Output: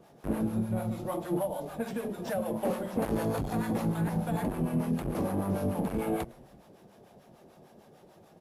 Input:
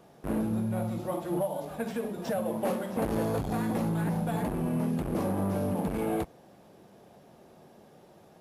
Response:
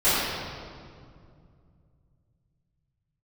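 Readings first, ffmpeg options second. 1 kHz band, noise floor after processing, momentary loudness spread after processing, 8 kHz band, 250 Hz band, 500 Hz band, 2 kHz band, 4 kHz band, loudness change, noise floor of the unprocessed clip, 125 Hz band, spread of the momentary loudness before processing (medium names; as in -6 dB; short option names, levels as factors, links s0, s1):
-1.0 dB, -58 dBFS, 5 LU, -0.5 dB, -0.5 dB, -1.0 dB, -1.0 dB, -1.0 dB, -1.0 dB, -56 dBFS, -0.5 dB, 5 LU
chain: -filter_complex "[0:a]asplit=5[s0][s1][s2][s3][s4];[s1]adelay=106,afreqshift=-99,volume=0.0794[s5];[s2]adelay=212,afreqshift=-198,volume=0.0462[s6];[s3]adelay=318,afreqshift=-297,volume=0.0266[s7];[s4]adelay=424,afreqshift=-396,volume=0.0155[s8];[s0][s5][s6][s7][s8]amix=inputs=5:normalize=0,acrossover=split=640[s9][s10];[s9]aeval=exprs='val(0)*(1-0.7/2+0.7/2*cos(2*PI*6.7*n/s))':c=same[s11];[s10]aeval=exprs='val(0)*(1-0.7/2-0.7/2*cos(2*PI*6.7*n/s))':c=same[s12];[s11][s12]amix=inputs=2:normalize=0,volume=1.33"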